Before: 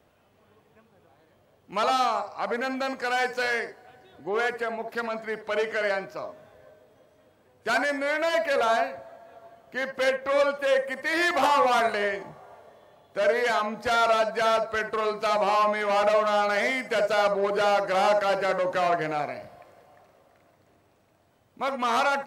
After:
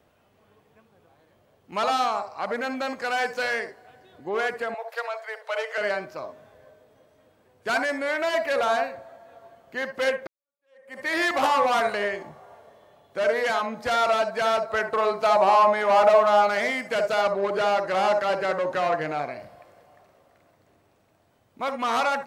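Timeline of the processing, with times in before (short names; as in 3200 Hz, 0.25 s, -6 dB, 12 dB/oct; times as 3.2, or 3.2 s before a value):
4.74–5.78 steep high-pass 460 Hz 96 dB/oct
10.27–10.99 fade in exponential
14.7–16.47 bell 780 Hz +6.5 dB 1.3 oct
17.21–19.39 high shelf 8200 Hz -6 dB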